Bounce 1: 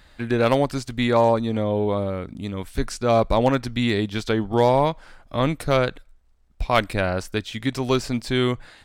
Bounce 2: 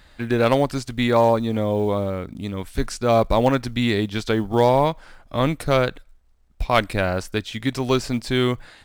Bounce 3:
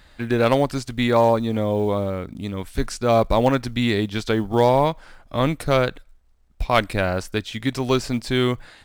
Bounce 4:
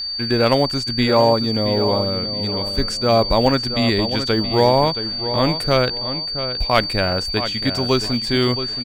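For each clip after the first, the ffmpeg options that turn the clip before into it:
-af "acrusher=bits=9:mode=log:mix=0:aa=0.000001,volume=1dB"
-af anull
-filter_complex "[0:a]asplit=2[a][b];[b]adelay=673,lowpass=f=3.5k:p=1,volume=-10dB,asplit=2[c][d];[d]adelay=673,lowpass=f=3.5k:p=1,volume=0.3,asplit=2[e][f];[f]adelay=673,lowpass=f=3.5k:p=1,volume=0.3[g];[a][c][e][g]amix=inputs=4:normalize=0,aeval=exprs='val(0)+0.0562*sin(2*PI*4600*n/s)':c=same,volume=1.5dB"

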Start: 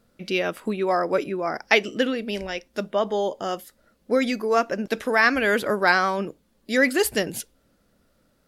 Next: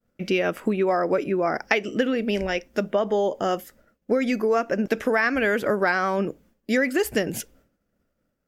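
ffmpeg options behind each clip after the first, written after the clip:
-af "agate=range=-33dB:threshold=-53dB:ratio=3:detection=peak,equalizer=f=1k:t=o:w=0.67:g=-4,equalizer=f=4k:t=o:w=0.67:g=-10,equalizer=f=10k:t=o:w=0.67:g=-9,acompressor=threshold=-25dB:ratio=6,volume=6.5dB"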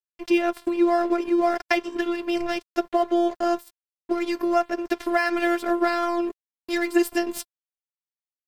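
-af "afftfilt=real='hypot(re,im)*cos(PI*b)':imag='0':win_size=512:overlap=0.75,aeval=exprs='sgn(val(0))*max(abs(val(0))-0.00708,0)':c=same,aecho=1:1:5.6:0.32,volume=3.5dB"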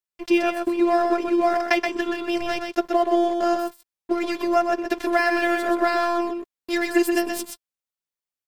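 -af "aecho=1:1:126:0.531,volume=1.5dB"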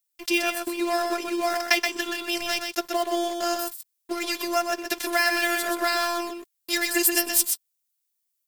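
-af "crystalizer=i=9.5:c=0,volume=-8.5dB"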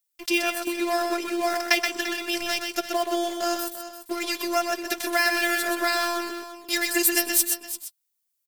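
-af "aecho=1:1:343:0.237"

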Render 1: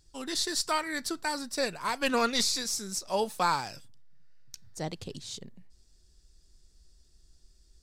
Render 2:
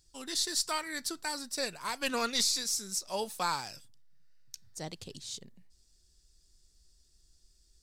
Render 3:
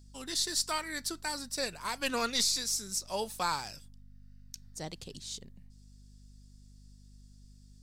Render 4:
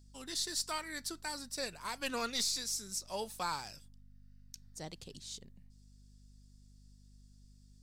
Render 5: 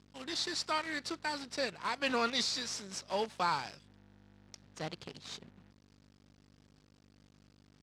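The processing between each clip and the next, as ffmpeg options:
-af "highshelf=f=2.9k:g=8,volume=-6.5dB"
-af "aeval=exprs='val(0)+0.002*(sin(2*PI*50*n/s)+sin(2*PI*2*50*n/s)/2+sin(2*PI*3*50*n/s)/3+sin(2*PI*4*50*n/s)/4+sin(2*PI*5*50*n/s)/5)':c=same"
-af "asoftclip=type=tanh:threshold=-17.5dB,volume=-4.5dB"
-af "acrusher=bits=8:dc=4:mix=0:aa=0.000001,highpass=110,lowpass=4k,volume=5.5dB"

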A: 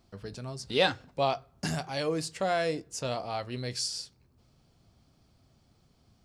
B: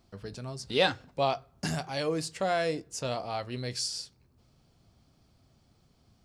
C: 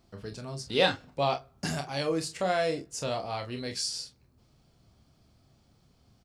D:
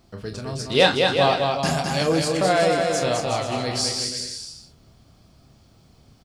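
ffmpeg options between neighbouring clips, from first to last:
-af "deesser=0.5"
-af "aecho=1:1:28|43:0.398|0.266"
-af "aecho=1:1:210|367.5|485.6|574.2|640.7:0.631|0.398|0.251|0.158|0.1,volume=7.5dB"

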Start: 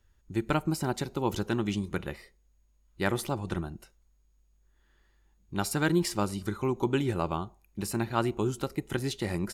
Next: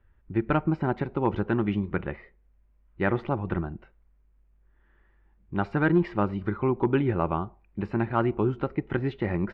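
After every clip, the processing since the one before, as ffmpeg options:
-af "volume=17dB,asoftclip=hard,volume=-17dB,lowpass=f=2.3k:w=0.5412,lowpass=f=2.3k:w=1.3066,volume=4dB"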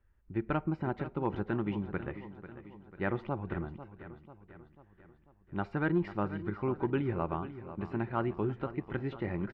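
-af "aecho=1:1:493|986|1479|1972|2465:0.224|0.119|0.0629|0.0333|0.0177,volume=-7.5dB"

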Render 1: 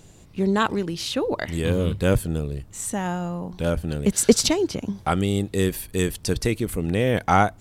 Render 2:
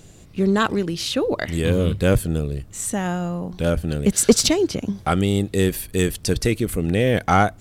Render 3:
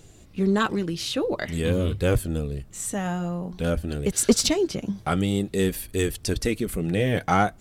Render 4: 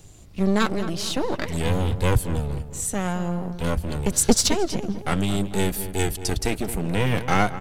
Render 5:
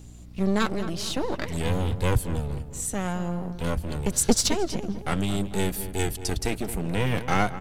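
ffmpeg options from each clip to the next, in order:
-filter_complex "[0:a]equalizer=f=920:t=o:w=0.34:g=-5.5,asplit=2[a][b];[b]asoftclip=type=hard:threshold=-16dB,volume=-7dB[c];[a][c]amix=inputs=2:normalize=0"
-af "flanger=delay=2.2:depth=4.9:regen=-48:speed=0.49:shape=triangular"
-filter_complex "[0:a]acrossover=split=170|4300[a][b][c];[b]aeval=exprs='max(val(0),0)':c=same[d];[a][d][c]amix=inputs=3:normalize=0,asplit=2[e][f];[f]adelay=221,lowpass=f=1.8k:p=1,volume=-11.5dB,asplit=2[g][h];[h]adelay=221,lowpass=f=1.8k:p=1,volume=0.49,asplit=2[i][j];[j]adelay=221,lowpass=f=1.8k:p=1,volume=0.49,asplit=2[k][l];[l]adelay=221,lowpass=f=1.8k:p=1,volume=0.49,asplit=2[m][n];[n]adelay=221,lowpass=f=1.8k:p=1,volume=0.49[o];[e][g][i][k][m][o]amix=inputs=6:normalize=0,volume=3.5dB"
-af "aeval=exprs='val(0)+0.00891*(sin(2*PI*60*n/s)+sin(2*PI*2*60*n/s)/2+sin(2*PI*3*60*n/s)/3+sin(2*PI*4*60*n/s)/4+sin(2*PI*5*60*n/s)/5)':c=same,volume=-3dB"

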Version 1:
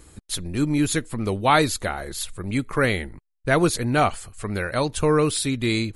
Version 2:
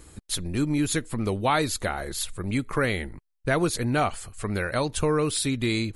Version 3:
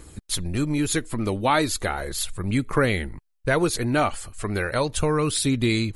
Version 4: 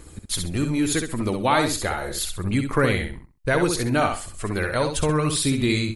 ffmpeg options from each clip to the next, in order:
-af "acompressor=threshold=-23dB:ratio=2"
-af "aphaser=in_gain=1:out_gain=1:delay=3.7:decay=0.27:speed=0.36:type=triangular,volume=2dB"
-af "aecho=1:1:65|130|195:0.501|0.12|0.0289"

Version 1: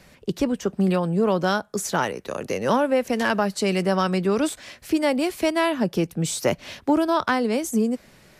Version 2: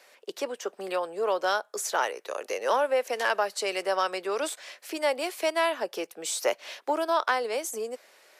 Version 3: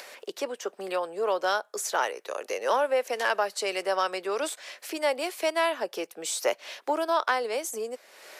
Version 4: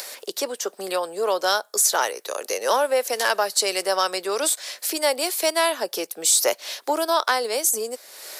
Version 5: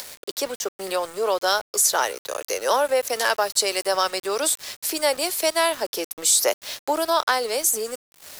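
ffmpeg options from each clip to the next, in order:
-af "highpass=f=450:w=0.5412,highpass=f=450:w=1.3066,volume=-2.5dB"
-af "acompressor=mode=upward:threshold=-35dB:ratio=2.5"
-af "aexciter=amount=3.4:drive=3.6:freq=3.7k,volume=4dB"
-af "aeval=exprs='val(0)*gte(abs(val(0)),0.0211)':c=same"

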